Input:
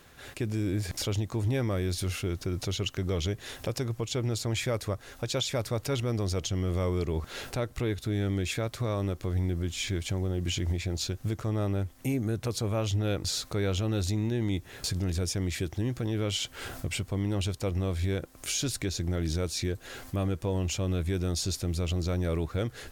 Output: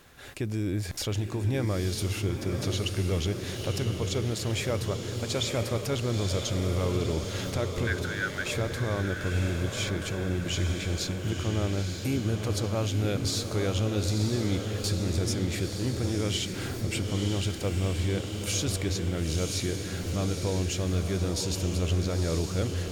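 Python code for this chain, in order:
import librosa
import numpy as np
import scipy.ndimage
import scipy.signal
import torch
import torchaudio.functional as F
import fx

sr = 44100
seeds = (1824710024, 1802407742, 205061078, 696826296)

y = fx.highpass_res(x, sr, hz=1500.0, q=11.0, at=(7.87, 8.48))
y = fx.echo_diffused(y, sr, ms=941, feedback_pct=62, wet_db=-5.0)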